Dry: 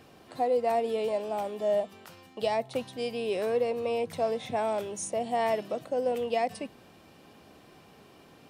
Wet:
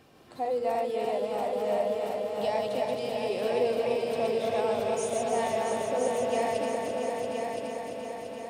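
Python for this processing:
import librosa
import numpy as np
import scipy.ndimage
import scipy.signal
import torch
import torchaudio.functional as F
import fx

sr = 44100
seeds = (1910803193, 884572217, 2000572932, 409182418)

y = fx.reverse_delay_fb(x, sr, ms=150, feedback_pct=55, wet_db=-2.5)
y = fx.echo_heads(y, sr, ms=340, heads='all three', feedback_pct=60, wet_db=-8)
y = F.gain(torch.from_numpy(y), -3.5).numpy()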